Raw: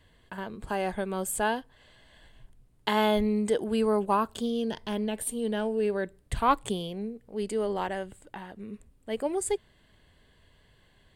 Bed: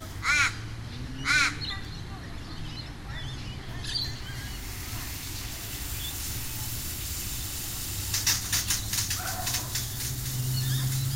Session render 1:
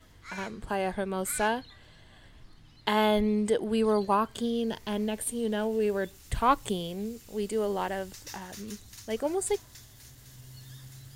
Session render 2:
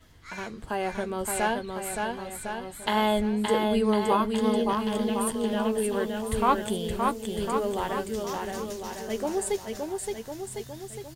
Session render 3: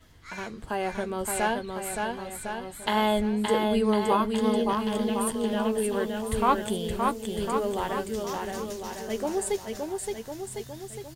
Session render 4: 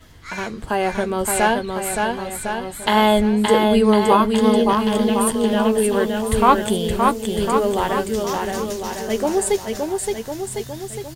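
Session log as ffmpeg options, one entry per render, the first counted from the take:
-filter_complex "[1:a]volume=0.106[s0];[0:a][s0]amix=inputs=2:normalize=0"
-filter_complex "[0:a]asplit=2[s0][s1];[s1]adelay=13,volume=0.282[s2];[s0][s2]amix=inputs=2:normalize=0,asplit=2[s3][s4];[s4]aecho=0:1:570|1054|1466|1816|2114:0.631|0.398|0.251|0.158|0.1[s5];[s3][s5]amix=inputs=2:normalize=0"
-af anull
-af "volume=2.82,alimiter=limit=0.891:level=0:latency=1"

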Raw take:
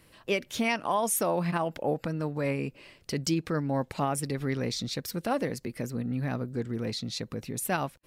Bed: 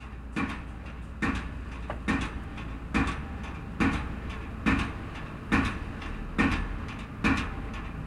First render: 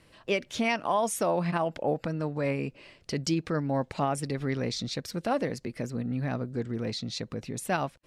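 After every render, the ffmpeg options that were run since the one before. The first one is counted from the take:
-af "lowpass=7800,equalizer=f=650:t=o:w=0.41:g=2.5"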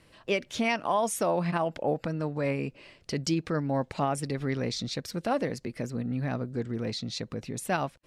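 -af anull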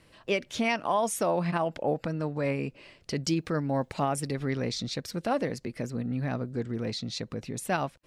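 -filter_complex "[0:a]asettb=1/sr,asplit=3[s0][s1][s2];[s0]atrim=end=3.284[s3];[s1]atrim=start=3.28:end=4.37,asetpts=PTS-STARTPTS,afade=t=in:d=0.004:c=qsin,afade=t=out:st=1.086:d=0.004:c=qsin,highshelf=f=12000:g=10[s4];[s2]atrim=start=4.366[s5];[s3][s4]acrossfade=d=0.004:c1=hsin:c2=qsin[s6];[s6][s5]acrossfade=d=0.004:c1=qsin:c2=hsin"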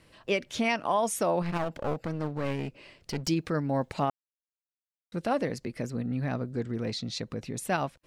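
-filter_complex "[0:a]asettb=1/sr,asplit=3[s0][s1][s2];[s0]atrim=end=1.424[s3];[s1]atrim=start=1.42:end=3.28,asetpts=PTS-STARTPTS,afade=t=in:d=0.004:c=qsin,afade=t=out:st=1.856:d=0.004:c=qsin,aeval=exprs='clip(val(0),-1,0.0168)':c=same[s4];[s2]atrim=start=3.276[s5];[s3][s4]acrossfade=d=0.004:c1=hsin:c2=qsin[s6];[s6][s5]acrossfade=d=0.004:c1=qsin:c2=hsin,asplit=3[s7][s8][s9];[s7]atrim=end=4.1,asetpts=PTS-STARTPTS,afade=t=out:st=4.096:d=0.004:c=hsin[s10];[s8]atrim=start=4.1:end=5.12,asetpts=PTS-STARTPTS,volume=0[s11];[s9]atrim=start=5.12,asetpts=PTS-STARTPTS,afade=t=in:d=0.004:c=hsin[s12];[s10][s11][s12]concat=n=3:v=0:a=1"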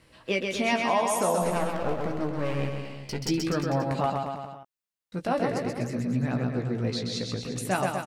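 -filter_complex "[0:a]asplit=2[s0][s1];[s1]adelay=16,volume=0.473[s2];[s0][s2]amix=inputs=2:normalize=0,aecho=1:1:130|247|352.3|447.1|532.4:0.631|0.398|0.251|0.158|0.1"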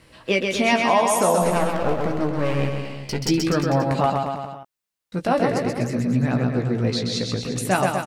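-af "volume=2.11"

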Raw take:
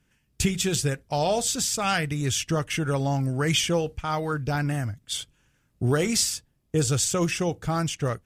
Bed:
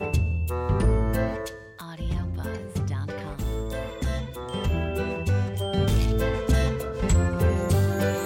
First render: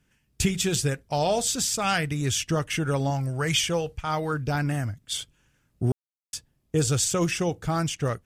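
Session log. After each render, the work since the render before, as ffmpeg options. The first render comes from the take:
-filter_complex "[0:a]asettb=1/sr,asplit=3[s0][s1][s2];[s0]atrim=end=3.104[s3];[s1]atrim=start=3.1:end=4.07,asetpts=PTS-STARTPTS,afade=t=in:d=0.004:c=qsin,afade=t=out:st=0.966:d=0.004:c=qsin,equalizer=f=260:w=1.5:g=-8[s4];[s2]atrim=start=4.066[s5];[s3][s4]acrossfade=d=0.004:c1=hsin:c2=qsin[s6];[s6][s5]acrossfade=d=0.004:c1=qsin:c2=hsin,asplit=3[s7][s8][s9];[s7]atrim=end=5.92,asetpts=PTS-STARTPTS,afade=t=out:st=5.916:d=0.004:c=hsin[s10];[s8]atrim=start=5.92:end=6.33,asetpts=PTS-STARTPTS,volume=0[s11];[s9]atrim=start=6.33,asetpts=PTS-STARTPTS,afade=t=in:d=0.004:c=hsin[s12];[s10][s11][s12]concat=n=3:v=0:a=1"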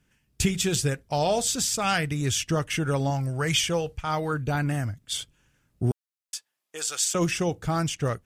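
-filter_complex "[0:a]asettb=1/sr,asplit=3[s0][s1][s2];[s0]atrim=end=4.284[s3];[s1]atrim=start=4.28:end=4.69,asetpts=PTS-STARTPTS,afade=t=in:d=0.004:c=qsin,afade=t=out:st=0.406:d=0.004:c=qsin,asuperstop=centerf=5200:order=20:qfactor=5.5[s4];[s2]atrim=start=4.686[s5];[s3][s4]acrossfade=d=0.004:c1=hsin:c2=qsin[s6];[s6][s5]acrossfade=d=0.004:c1=qsin:c2=hsin,asettb=1/sr,asplit=3[s7][s8][s9];[s7]atrim=end=5.914[s10];[s8]atrim=start=5.91:end=7.15,asetpts=PTS-STARTPTS,afade=t=in:d=0.004:c=qsin,afade=t=out:st=1.236:d=0.004:c=qsin,highpass=1000[s11];[s9]atrim=start=7.146[s12];[s10][s11]acrossfade=d=0.004:c1=hsin:c2=qsin[s13];[s13][s12]acrossfade=d=0.004:c1=qsin:c2=hsin"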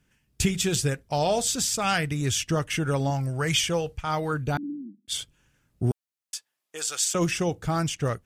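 -filter_complex "[0:a]asettb=1/sr,asplit=3[s0][s1][s2];[s0]atrim=end=4.574[s3];[s1]atrim=start=4.57:end=5.08,asetpts=PTS-STARTPTS,afade=t=in:d=0.004:c=qsin,afade=t=out:st=0.506:d=0.004:c=qsin,asuperpass=centerf=260:order=12:qfactor=1.6[s4];[s2]atrim=start=5.076[s5];[s3][s4]acrossfade=d=0.004:c1=hsin:c2=qsin[s6];[s6][s5]acrossfade=d=0.004:c1=qsin:c2=hsin"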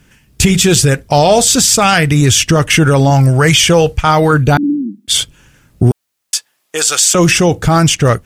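-af "acontrast=81,alimiter=level_in=4.22:limit=0.891:release=50:level=0:latency=1"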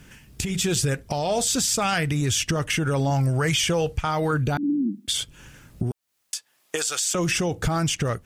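-af "acompressor=threshold=0.1:ratio=5,alimiter=limit=0.2:level=0:latency=1:release=350"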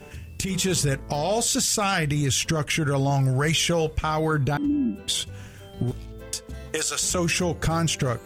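-filter_complex "[1:a]volume=0.15[s0];[0:a][s0]amix=inputs=2:normalize=0"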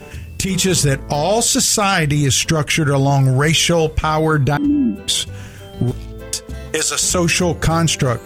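-af "volume=2.51"

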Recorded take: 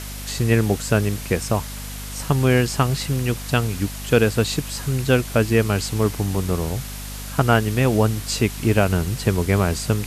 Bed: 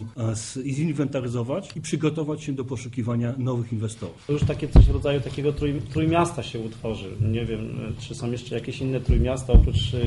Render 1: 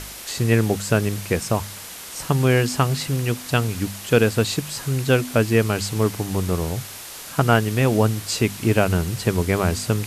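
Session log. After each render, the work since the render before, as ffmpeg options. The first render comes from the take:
-af "bandreject=f=50:t=h:w=4,bandreject=f=100:t=h:w=4,bandreject=f=150:t=h:w=4,bandreject=f=200:t=h:w=4,bandreject=f=250:t=h:w=4"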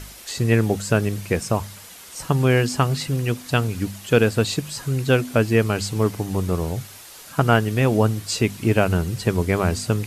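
-af "afftdn=nr=7:nf=-37"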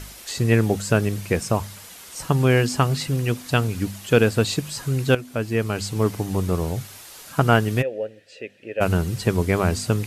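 -filter_complex "[0:a]asplit=3[s0][s1][s2];[s0]afade=t=out:st=7.81:d=0.02[s3];[s1]asplit=3[s4][s5][s6];[s4]bandpass=f=530:t=q:w=8,volume=1[s7];[s5]bandpass=f=1840:t=q:w=8,volume=0.501[s8];[s6]bandpass=f=2480:t=q:w=8,volume=0.355[s9];[s7][s8][s9]amix=inputs=3:normalize=0,afade=t=in:st=7.81:d=0.02,afade=t=out:st=8.8:d=0.02[s10];[s2]afade=t=in:st=8.8:d=0.02[s11];[s3][s10][s11]amix=inputs=3:normalize=0,asplit=2[s12][s13];[s12]atrim=end=5.15,asetpts=PTS-STARTPTS,afade=t=out:st=5.146:d=0.004:c=hsin:silence=0.251189[s14];[s13]atrim=start=5.15,asetpts=PTS-STARTPTS,afade=t=in:d=0.98:silence=0.251189[s15];[s14][s15]concat=n=2:v=0:a=1"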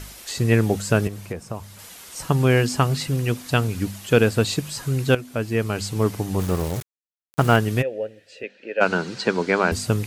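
-filter_complex "[0:a]asettb=1/sr,asplit=3[s0][s1][s2];[s0]atrim=end=1.074[s3];[s1]atrim=start=1.07:end=1.79,asetpts=PTS-STARTPTS,afade=t=in:d=0.004:c=qsin,afade=t=out:st=0.716:d=0.004:c=qsin,acrossover=split=590|1200[s4][s5][s6];[s4]acompressor=threshold=0.0282:ratio=4[s7];[s5]acompressor=threshold=0.0112:ratio=4[s8];[s6]acompressor=threshold=0.00562:ratio=4[s9];[s7][s8][s9]amix=inputs=3:normalize=0[s10];[s2]atrim=start=1.786[s11];[s3][s10]acrossfade=d=0.004:c1=hsin:c2=qsin[s12];[s12][s11]acrossfade=d=0.004:c1=qsin:c2=hsin,asettb=1/sr,asplit=3[s13][s14][s15];[s13]atrim=end=6.394[s16];[s14]atrim=start=6.39:end=7.56,asetpts=PTS-STARTPTS,afade=t=in:d=0.004:c=qsin,afade=t=out:st=1.166:d=0.004:c=qsin,aeval=exprs='val(0)*gte(abs(val(0)),0.0376)':c=same[s17];[s15]atrim=start=7.556[s18];[s16][s17]acrossfade=d=0.004:c1=hsin:c2=qsin[s19];[s19][s18]acrossfade=d=0.004:c1=qsin:c2=hsin,asettb=1/sr,asplit=3[s20][s21][s22];[s20]atrim=end=8.434[s23];[s21]atrim=start=8.43:end=9.72,asetpts=PTS-STARTPTS,afade=t=in:d=0.004:c=qsin,afade=t=out:st=1.286:d=0.004:c=qsin,highpass=f=190:w=0.5412,highpass=f=190:w=1.3066,equalizer=f=500:t=q:w=4:g=3,equalizer=f=900:t=q:w=4:g=5,equalizer=f=1500:t=q:w=4:g=9,equalizer=f=2400:t=q:w=4:g=3,equalizer=f=4300:t=q:w=4:g=7,lowpass=f=6800:w=0.5412,lowpass=f=6800:w=1.3066[s24];[s22]atrim=start=9.716[s25];[s23][s24]acrossfade=d=0.004:c1=hsin:c2=qsin[s26];[s26][s25]acrossfade=d=0.004:c1=qsin:c2=hsin"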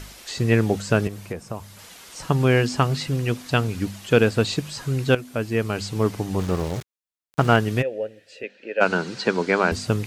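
-filter_complex "[0:a]acrossover=split=7000[s0][s1];[s1]acompressor=threshold=0.00355:ratio=4:attack=1:release=60[s2];[s0][s2]amix=inputs=2:normalize=0,equalizer=f=78:w=0.93:g=-2.5"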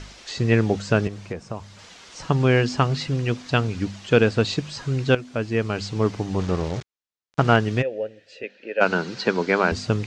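-af "lowpass=f=6700:w=0.5412,lowpass=f=6700:w=1.3066"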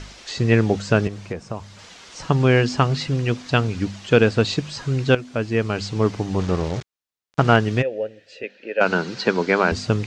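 -af "volume=1.26,alimiter=limit=0.708:level=0:latency=1"

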